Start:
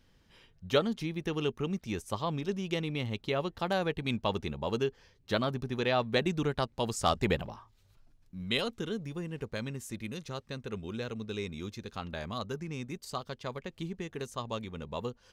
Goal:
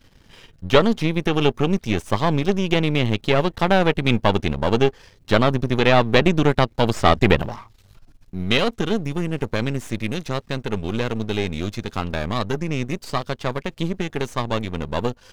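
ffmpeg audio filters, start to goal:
-filter_complex "[0:a]aeval=exprs='if(lt(val(0),0),0.251*val(0),val(0))':c=same,apsyclip=17.5dB,acrossover=split=4500[a][b];[b]acompressor=threshold=-38dB:ratio=4:attack=1:release=60[c];[a][c]amix=inputs=2:normalize=0,volume=-1.5dB"

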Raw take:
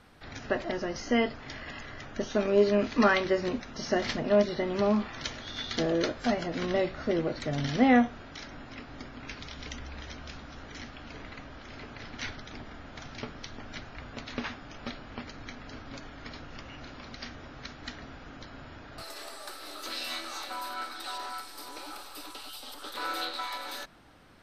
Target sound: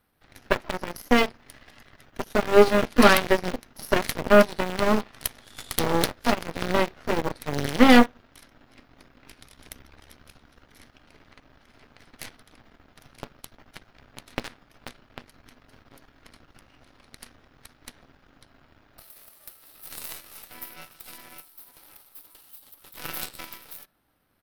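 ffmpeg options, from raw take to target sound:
-filter_complex "[0:a]asplit=2[a][b];[b]adelay=78,lowpass=f=1.8k:p=1,volume=-21.5dB,asplit=2[c][d];[d]adelay=78,lowpass=f=1.8k:p=1,volume=0.43,asplit=2[e][f];[f]adelay=78,lowpass=f=1.8k:p=1,volume=0.43[g];[a][c][e][g]amix=inputs=4:normalize=0,aeval=exprs='0.299*(cos(1*acos(clip(val(0)/0.299,-1,1)))-cos(1*PI/2))+0.00237*(cos(2*acos(clip(val(0)/0.299,-1,1)))-cos(2*PI/2))+0.0531*(cos(6*acos(clip(val(0)/0.299,-1,1)))-cos(6*PI/2))+0.0376*(cos(7*acos(clip(val(0)/0.299,-1,1)))-cos(7*PI/2))+0.00376*(cos(8*acos(clip(val(0)/0.299,-1,1)))-cos(8*PI/2))':c=same,aexciter=amount=10.8:drive=2.6:freq=10k,asplit=2[h][i];[i]acrusher=bits=4:mix=0:aa=0.000001,volume=-9dB[j];[h][j]amix=inputs=2:normalize=0,volume=4dB"

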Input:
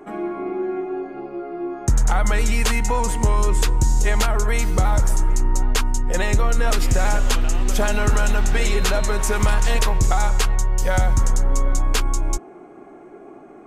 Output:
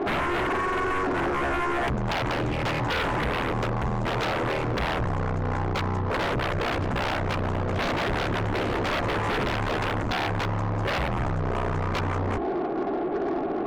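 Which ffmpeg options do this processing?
-af "asoftclip=type=tanh:threshold=-17dB,lowpass=1k,lowshelf=f=220:g=-6.5,acompressor=threshold=-31dB:ratio=10,bandreject=f=60:t=h:w=6,bandreject=f=120:t=h:w=6,bandreject=f=180:t=h:w=6,bandreject=f=240:t=h:w=6,bandreject=f=300:t=h:w=6,bandreject=f=360:t=h:w=6,bandreject=f=420:t=h:w=6,aeval=exprs='0.0562*sin(PI/2*4.47*val(0)/0.0562)':c=same,aeval=exprs='0.0562*(cos(1*acos(clip(val(0)/0.0562,-1,1)))-cos(1*PI/2))+0.00282*(cos(5*acos(clip(val(0)/0.0562,-1,1)))-cos(5*PI/2))':c=same,volume=2.5dB"

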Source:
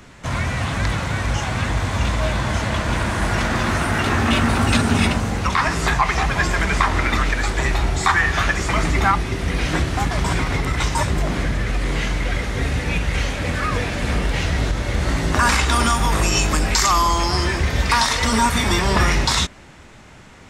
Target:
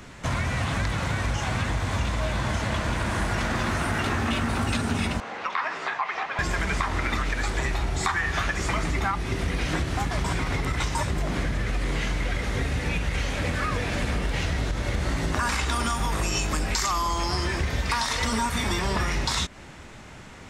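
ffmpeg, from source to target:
-filter_complex "[0:a]acompressor=threshold=-23dB:ratio=5,asettb=1/sr,asplit=3[a][b][c];[a]atrim=end=5.204[d];[b]atrim=start=5.2:end=6.39,asetpts=PTS-STARTPTS,afade=t=in:d=0.004:c=qsin,afade=t=out:st=1.186:d=0.004:c=qsin,highpass=550,lowpass=3.1k[e];[c]atrim=start=6.386[f];[d][e]acrossfade=d=0.004:c1=hsin:c2=qsin[g];[g][f]acrossfade=d=0.004:c1=qsin:c2=hsin"

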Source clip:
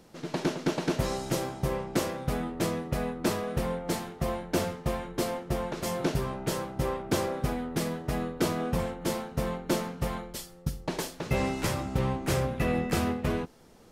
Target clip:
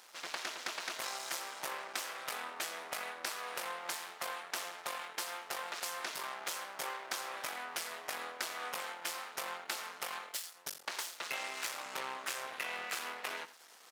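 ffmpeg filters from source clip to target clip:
-filter_complex "[0:a]aeval=exprs='max(val(0),0)':c=same,highpass=1.2k,asplit=2[a][b];[b]aecho=0:1:87:0.119[c];[a][c]amix=inputs=2:normalize=0,acompressor=threshold=-45dB:ratio=6,volume=9dB"

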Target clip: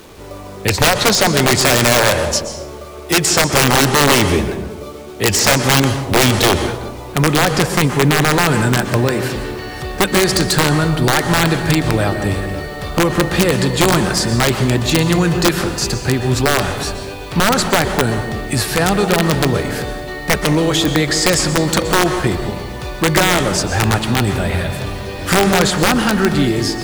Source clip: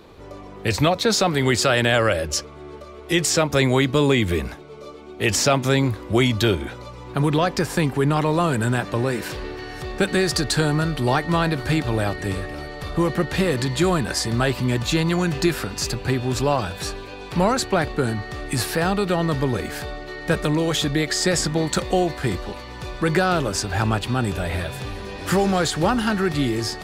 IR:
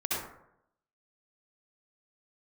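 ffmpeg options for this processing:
-filter_complex "[0:a]aeval=exprs='(mod(3.55*val(0)+1,2)-1)/3.55':c=same,acrusher=bits=7:mix=0:aa=0.000001,asplit=2[a][b];[1:a]atrim=start_sample=2205,asetrate=22932,aresample=44100[c];[b][c]afir=irnorm=-1:irlink=0,volume=-17.5dB[d];[a][d]amix=inputs=2:normalize=0,volume=4.5dB"

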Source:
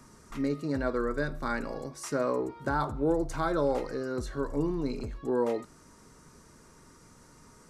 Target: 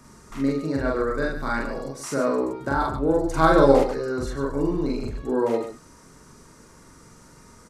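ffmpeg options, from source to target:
-filter_complex "[0:a]asplit=3[a][b][c];[a]afade=t=out:st=3.36:d=0.02[d];[b]acontrast=76,afade=t=in:st=3.36:d=0.02,afade=t=out:st=3.78:d=0.02[e];[c]afade=t=in:st=3.78:d=0.02[f];[d][e][f]amix=inputs=3:normalize=0,aecho=1:1:43.73|142.9:1|0.398,volume=2.5dB"

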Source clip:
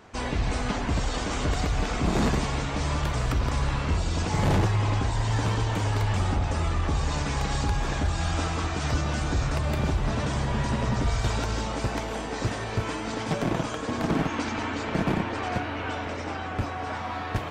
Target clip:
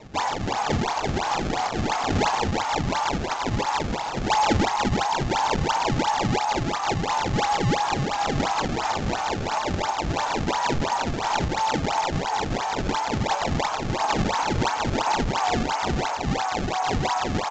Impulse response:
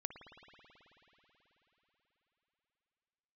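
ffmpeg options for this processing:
-af "highpass=f=850:t=q:w=6.1,acrusher=samples=26:mix=1:aa=0.000001:lfo=1:lforange=41.6:lforate=2.9,asoftclip=type=tanh:threshold=-15.5dB,aresample=16000,aresample=44100,volume=1.5dB"

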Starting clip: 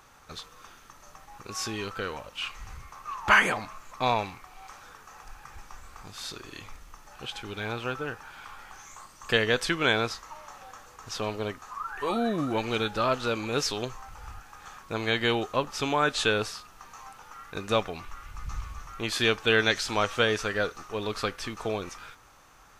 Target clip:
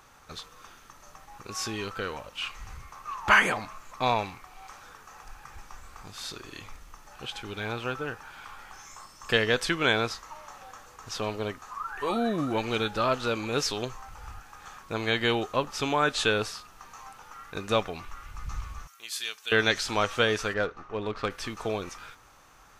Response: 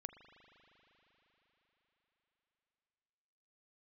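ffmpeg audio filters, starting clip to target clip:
-filter_complex "[0:a]asettb=1/sr,asplit=3[a][b][c];[a]atrim=end=8.734[d];[b]atrim=start=8.73:end=9.56,asetpts=PTS-STARTPTS,afade=t=in:d=0.004:c=qsin,afade=t=out:st=0.826:d=0.004:c=qsin,aeval=exprs='val(0)+0.00141*sin(2*PI*5300*n/s)':c=same[e];[c]atrim=start=9.556[f];[d][e]acrossfade=d=0.004:c1=hsin:c2=qsin[g];[g][f]acrossfade=d=0.004:c1=qsin:c2=hsin,asettb=1/sr,asplit=3[h][i][j];[h]atrim=end=18.874[k];[i]atrim=start=18.87:end=19.52,asetpts=PTS-STARTPTS,afade=t=in:d=0.004:c=qsin,afade=t=out:st=0.646:d=0.004:c=qsin,aderivative[l];[j]atrim=start=19.516[m];[k][l]acrossfade=d=0.004:c1=hsin:c2=qsin[n];[n][m]acrossfade=d=0.004:c1=qsin:c2=hsin,asplit=3[o][p][q];[o]afade=t=out:st=20.53:d=0.02[r];[p]adynamicsmooth=sensitivity=1.5:basefreq=2.3k,afade=t=in:st=20.53:d=0.02,afade=t=out:st=21.29:d=0.02[s];[q]afade=t=in:st=21.29:d=0.02[t];[r][s][t]amix=inputs=3:normalize=0"

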